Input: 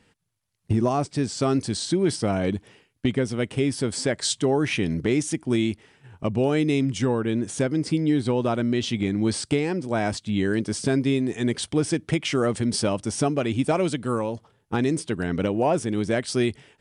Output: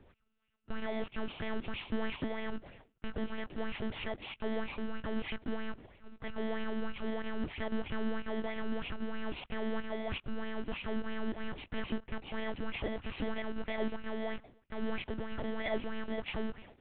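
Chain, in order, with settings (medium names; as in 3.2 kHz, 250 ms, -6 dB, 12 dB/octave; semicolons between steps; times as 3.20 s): bit-reversed sample order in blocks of 32 samples; bass shelf 98 Hz -3.5 dB; reverse; compression 12:1, threshold -30 dBFS, peak gain reduction 13.5 dB; reverse; peak limiter -29 dBFS, peak gain reduction 9.5 dB; monotone LPC vocoder at 8 kHz 220 Hz; sweeping bell 3.1 Hz 250–2600 Hz +10 dB; trim +3 dB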